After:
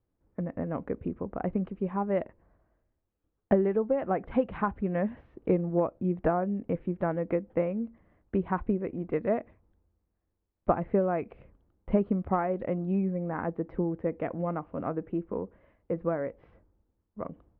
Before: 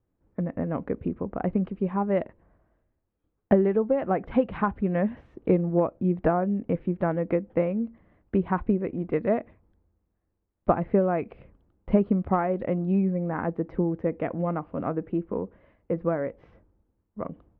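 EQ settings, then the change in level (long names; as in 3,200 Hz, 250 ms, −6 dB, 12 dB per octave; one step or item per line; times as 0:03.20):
high-frequency loss of the air 160 metres
parametric band 180 Hz −2.5 dB 2 octaves
−2.0 dB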